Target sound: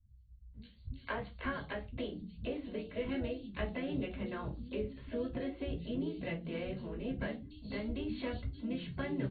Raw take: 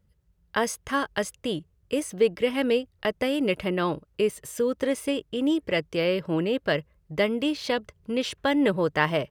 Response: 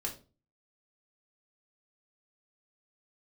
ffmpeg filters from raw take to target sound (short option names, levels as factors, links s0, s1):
-filter_complex "[0:a]acrossover=split=4700[s0][s1];[s1]acompressor=threshold=0.00224:ratio=4:attack=1:release=60[s2];[s0][s2]amix=inputs=2:normalize=0,asubboost=boost=9.5:cutoff=150,acompressor=threshold=0.0224:ratio=12,asplit=2[s3][s4];[s4]asetrate=58866,aresample=44100,atempo=0.749154,volume=0.316[s5];[s3][s5]amix=inputs=2:normalize=0,acrossover=split=190|4200[s6][s7][s8];[s8]adelay=90[s9];[s7]adelay=540[s10];[s6][s10][s9]amix=inputs=3:normalize=0[s11];[1:a]atrim=start_sample=2205,afade=t=out:st=0.25:d=0.01,atrim=end_sample=11466,asetrate=57330,aresample=44100[s12];[s11][s12]afir=irnorm=-1:irlink=0,volume=0.891" -ar 32000 -c:a ac3 -b:a 48k